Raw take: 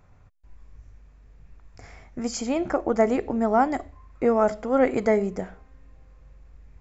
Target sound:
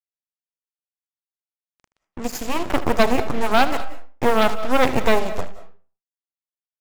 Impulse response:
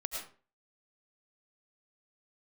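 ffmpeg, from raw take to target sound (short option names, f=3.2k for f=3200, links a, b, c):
-filter_complex "[0:a]aeval=exprs='0.422*(cos(1*acos(clip(val(0)/0.422,-1,1)))-cos(1*PI/2))+0.0119*(cos(3*acos(clip(val(0)/0.422,-1,1)))-cos(3*PI/2))+0.0422*(cos(4*acos(clip(val(0)/0.422,-1,1)))-cos(4*PI/2))+0.188*(cos(6*acos(clip(val(0)/0.422,-1,1)))-cos(6*PI/2))':c=same,acrusher=bits=4:mix=0:aa=0.5,asplit=2[a][b];[1:a]atrim=start_sample=2205,adelay=77[c];[b][c]afir=irnorm=-1:irlink=0,volume=-13.5dB[d];[a][d]amix=inputs=2:normalize=0"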